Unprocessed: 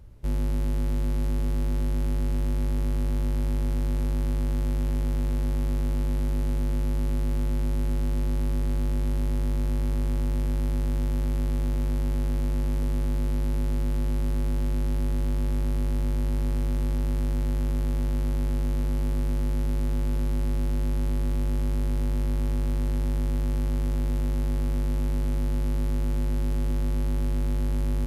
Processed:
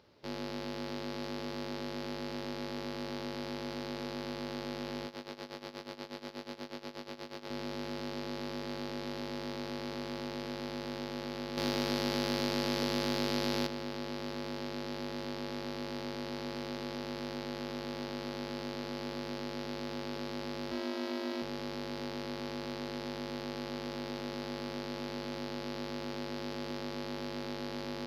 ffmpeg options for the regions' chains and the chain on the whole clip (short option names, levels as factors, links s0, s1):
-filter_complex "[0:a]asettb=1/sr,asplit=3[s0][s1][s2];[s0]atrim=end=5.064[s3];[s1]atrim=start=5.06:end=7.5,asetpts=PTS-STARTPTS,afade=t=in:d=0.004:c=qsin,afade=t=out:st=2.436:d=0.004:c=qsin,lowshelf=f=180:g=-9.5,tremolo=f=8.3:d=0.84[s4];[s2]atrim=start=7.496[s5];[s3][s4]acrossfade=d=0.004:c1=hsin:c2=qsin[s6];[s6][s5]acrossfade=d=0.004:c1=qsin:c2=hsin,asettb=1/sr,asplit=3[s7][s8][s9];[s7]atrim=end=11.574[s10];[s8]atrim=start=11.57:end=13.67,asetpts=PTS-STARTPTS,afade=t=in:d=0.004:c=qsin,afade=t=out:st=2.096:d=0.004:c=qsin,acontrast=67,highshelf=f=4200:g=7.5[s11];[s9]atrim=start=13.666[s12];[s10][s11]acrossfade=d=0.004:c1=hsin:c2=qsin[s13];[s13][s12]acrossfade=d=0.004:c1=qsin:c2=hsin,asettb=1/sr,asplit=3[s14][s15][s16];[s14]atrim=end=20.714[s17];[s15]atrim=start=20.71:end=21.42,asetpts=PTS-STARTPTS,afade=t=in:d=0.004:c=qsin,afade=t=out:st=0.706:d=0.004:c=qsin,equalizer=f=8400:w=0.39:g=-3,bandreject=f=50:t=h:w=6,bandreject=f=100:t=h:w=6,bandreject=f=150:t=h:w=6,bandreject=f=200:t=h:w=6,aecho=1:1:3.1:0.98,atrim=end_sample=31311[s18];[s16]atrim=start=21.416[s19];[s17][s18]acrossfade=d=0.004:c1=hsin:c2=qsin[s20];[s20][s19]acrossfade=d=0.004:c1=qsin:c2=hsin,highpass=360,highshelf=f=6400:t=q:w=3:g=-11.5,volume=1.12"